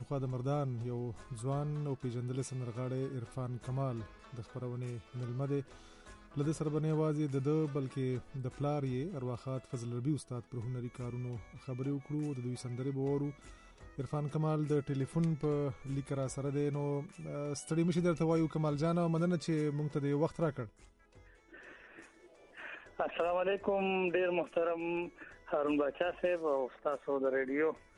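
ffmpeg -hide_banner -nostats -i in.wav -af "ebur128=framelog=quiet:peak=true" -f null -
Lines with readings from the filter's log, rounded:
Integrated loudness:
  I:         -36.0 LUFS
  Threshold: -46.5 LUFS
Loudness range:
  LRA:         6.3 LU
  Threshold: -56.6 LUFS
  LRA low:   -40.1 LUFS
  LRA high:  -33.9 LUFS
True peak:
  Peak:      -19.8 dBFS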